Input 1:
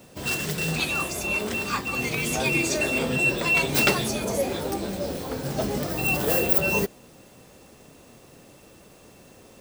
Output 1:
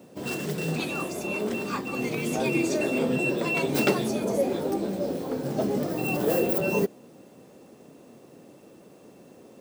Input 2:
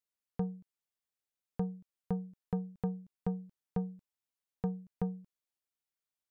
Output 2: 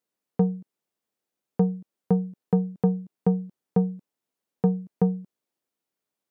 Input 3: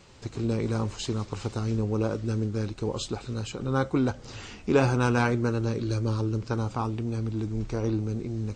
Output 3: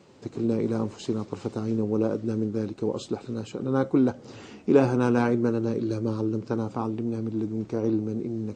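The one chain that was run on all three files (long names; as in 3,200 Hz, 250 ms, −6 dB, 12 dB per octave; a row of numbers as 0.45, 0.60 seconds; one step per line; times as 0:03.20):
high-pass filter 240 Hz 12 dB per octave
tilt shelving filter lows +8 dB, about 650 Hz
loudness normalisation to −27 LKFS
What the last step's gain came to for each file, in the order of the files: −0.5, +12.0, +1.0 decibels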